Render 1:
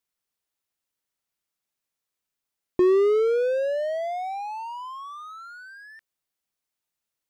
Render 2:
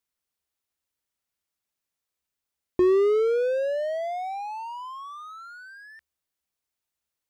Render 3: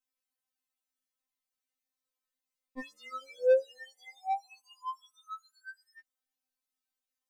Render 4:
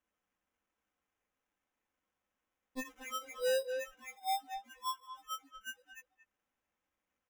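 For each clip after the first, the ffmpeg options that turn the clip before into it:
ffmpeg -i in.wav -af "equalizer=frequency=71:width=6.6:gain=13.5,volume=-1dB" out.wav
ffmpeg -i in.wav -af "afftfilt=real='re*3.46*eq(mod(b,12),0)':imag='im*3.46*eq(mod(b,12),0)':win_size=2048:overlap=0.75,volume=-3.5dB" out.wav
ffmpeg -i in.wav -filter_complex "[0:a]acrusher=samples=10:mix=1:aa=0.000001,asplit=2[link_01][link_02];[link_02]adelay=230,highpass=300,lowpass=3400,asoftclip=type=hard:threshold=-23.5dB,volume=-12dB[link_03];[link_01][link_03]amix=inputs=2:normalize=0,asoftclip=type=tanh:threshold=-30dB,volume=1.5dB" out.wav

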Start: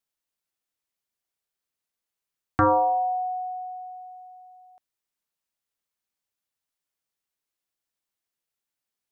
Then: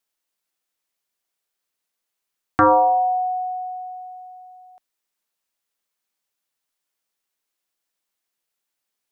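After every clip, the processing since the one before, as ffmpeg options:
ffmpeg -i in.wav -af "equalizer=frequency=60:width=0.48:gain=-11.5,volume=6dB" out.wav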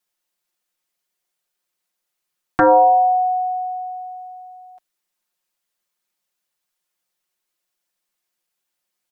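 ffmpeg -i in.wav -af "aecho=1:1:5.6:0.76" out.wav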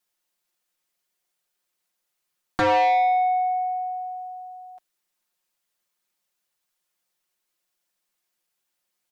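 ffmpeg -i in.wav -af "asoftclip=type=tanh:threshold=-17dB" out.wav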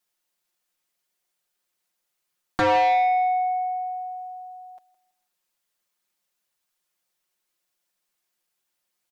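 ffmpeg -i in.wav -af "aecho=1:1:164|328|492:0.126|0.0378|0.0113" out.wav

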